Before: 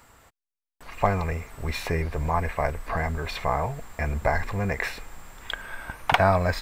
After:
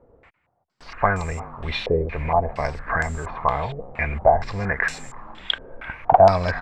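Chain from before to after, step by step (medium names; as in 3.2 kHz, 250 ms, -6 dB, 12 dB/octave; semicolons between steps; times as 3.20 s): 4.95–5.58 s: frequency shift -24 Hz; frequency-shifting echo 341 ms, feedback 45%, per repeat +59 Hz, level -18.5 dB; step-sequenced low-pass 4.3 Hz 490–7400 Hz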